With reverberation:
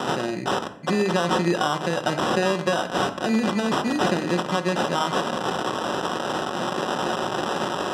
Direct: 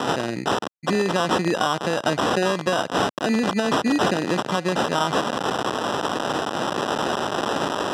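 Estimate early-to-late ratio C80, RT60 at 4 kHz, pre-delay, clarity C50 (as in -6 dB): 15.5 dB, 0.50 s, 5 ms, 12.5 dB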